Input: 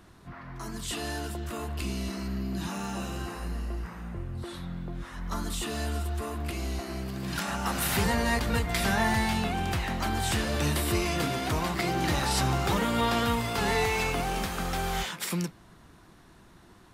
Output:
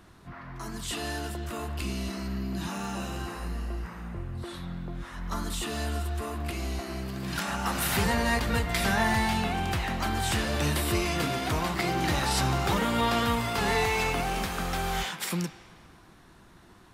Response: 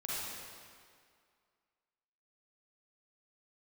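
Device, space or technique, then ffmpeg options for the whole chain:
filtered reverb send: -filter_complex "[0:a]asplit=2[link_01][link_02];[link_02]highpass=590,lowpass=5000[link_03];[1:a]atrim=start_sample=2205[link_04];[link_03][link_04]afir=irnorm=-1:irlink=0,volume=-13.5dB[link_05];[link_01][link_05]amix=inputs=2:normalize=0"

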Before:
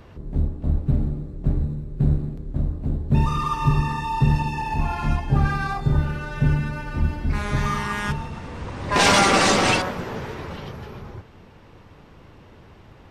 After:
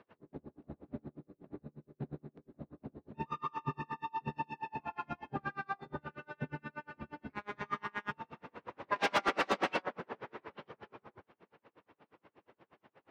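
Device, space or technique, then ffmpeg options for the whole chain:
helicopter radio: -af "highpass=300,lowpass=2600,aeval=exprs='val(0)*pow(10,-36*(0.5-0.5*cos(2*PI*8.4*n/s))/20)':channel_layout=same,asoftclip=type=hard:threshold=-16.5dB,volume=-5.5dB"

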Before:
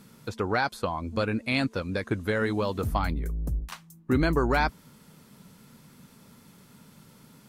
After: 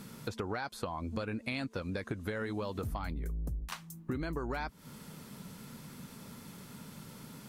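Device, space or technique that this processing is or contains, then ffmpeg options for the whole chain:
serial compression, peaks first: -af "acompressor=threshold=-33dB:ratio=6,acompressor=threshold=-47dB:ratio=1.5,volume=4.5dB"

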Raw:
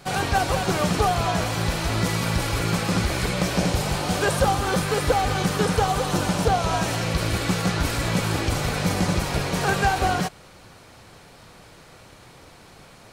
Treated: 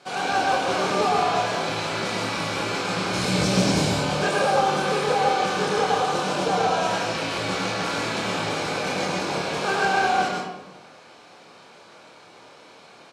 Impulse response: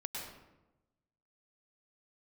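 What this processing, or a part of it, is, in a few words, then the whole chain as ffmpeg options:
supermarket ceiling speaker: -filter_complex "[0:a]bandreject=frequency=1900:width=11,asettb=1/sr,asplit=3[link_01][link_02][link_03];[link_01]atrim=end=3.134[link_04];[link_02]atrim=start=3.13:end=3.89,asetpts=PTS-STARTPTS,afade=type=in:duration=0.004:curve=qsin,afade=type=out:start_time=0.756:duration=0.004:curve=qsin,bass=frequency=250:gain=15,treble=frequency=4000:gain=8[link_05];[link_03]atrim=start=3.886[link_06];[link_04][link_05]acrossfade=duration=0.004:curve1=hsin:curve2=qsin[link_07];[link_07][link_06]acrossfade=duration=0.004:curve1=qsin:curve2=hsin,highpass=300,lowpass=6600,asplit=2[link_08][link_09];[link_09]adelay=26,volume=-4.5dB[link_10];[link_08][link_10]amix=inputs=2:normalize=0[link_11];[1:a]atrim=start_sample=2205[link_12];[link_11][link_12]afir=irnorm=-1:irlink=0"

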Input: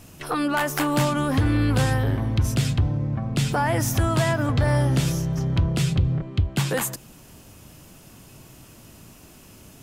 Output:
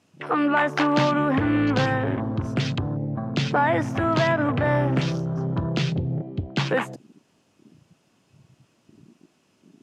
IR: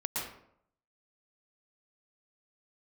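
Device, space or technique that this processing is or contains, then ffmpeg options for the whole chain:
over-cleaned archive recording: -af "highpass=180,lowpass=5900,afwtdn=0.0141,volume=3dB"

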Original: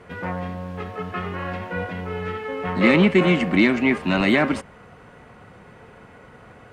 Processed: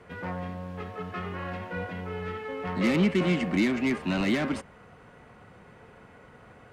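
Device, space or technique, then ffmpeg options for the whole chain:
one-band saturation: -filter_complex "[0:a]acrossover=split=300|4000[link_01][link_02][link_03];[link_02]asoftclip=type=tanh:threshold=-21.5dB[link_04];[link_01][link_04][link_03]amix=inputs=3:normalize=0,volume=-5.5dB"

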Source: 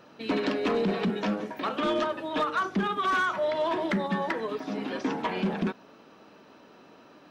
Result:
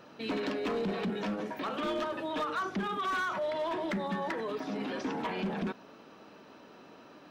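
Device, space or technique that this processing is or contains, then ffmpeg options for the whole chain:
clipper into limiter: -af "asoftclip=type=hard:threshold=-22.5dB,alimiter=level_in=4dB:limit=-24dB:level=0:latency=1:release=13,volume=-4dB"

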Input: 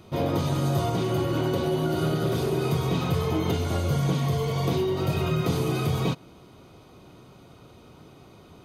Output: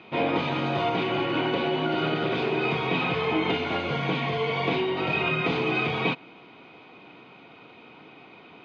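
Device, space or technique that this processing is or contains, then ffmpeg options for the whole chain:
phone earpiece: -af "highpass=330,equalizer=frequency=380:width_type=q:width=4:gain=-6,equalizer=frequency=580:width_type=q:width=4:gain=-8,equalizer=frequency=1200:width_type=q:width=4:gain=-5,equalizer=frequency=2400:width_type=q:width=4:gain=8,lowpass=frequency=3300:width=0.5412,lowpass=frequency=3300:width=1.3066,volume=7dB"

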